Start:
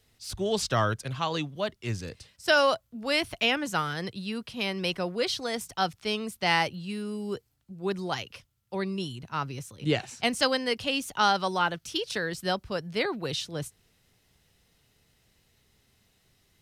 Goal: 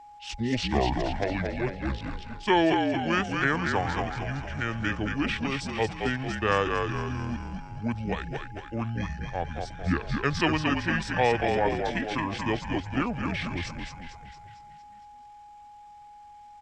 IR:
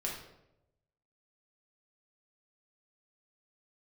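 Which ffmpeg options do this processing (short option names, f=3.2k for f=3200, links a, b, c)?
-filter_complex "[0:a]asplit=8[a][b][c][d][e][f][g][h];[b]adelay=227,afreqshift=-82,volume=-4dB[i];[c]adelay=454,afreqshift=-164,volume=-9.4dB[j];[d]adelay=681,afreqshift=-246,volume=-14.7dB[k];[e]adelay=908,afreqshift=-328,volume=-20.1dB[l];[f]adelay=1135,afreqshift=-410,volume=-25.4dB[m];[g]adelay=1362,afreqshift=-492,volume=-30.8dB[n];[h]adelay=1589,afreqshift=-574,volume=-36.1dB[o];[a][i][j][k][l][m][n][o]amix=inputs=8:normalize=0,asetrate=26222,aresample=44100,atempo=1.68179,aeval=exprs='val(0)+0.00501*sin(2*PI*830*n/s)':c=same"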